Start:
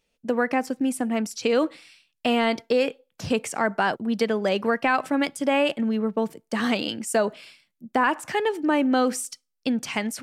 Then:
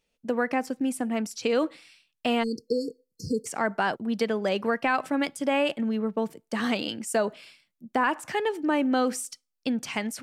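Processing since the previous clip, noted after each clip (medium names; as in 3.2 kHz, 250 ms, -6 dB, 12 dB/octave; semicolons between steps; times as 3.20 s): spectral selection erased 2.43–3.47 s, 500–4200 Hz; trim -3 dB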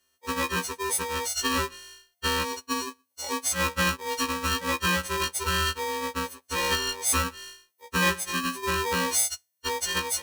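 partials quantised in pitch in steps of 6 st; polarity switched at an audio rate 700 Hz; trim -3.5 dB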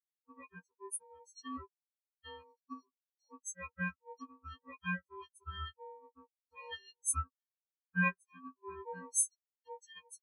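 spectral contrast expander 4:1; trim -6 dB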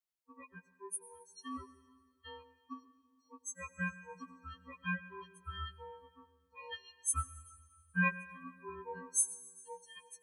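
reverberation RT60 1.8 s, pre-delay 87 ms, DRR 16 dB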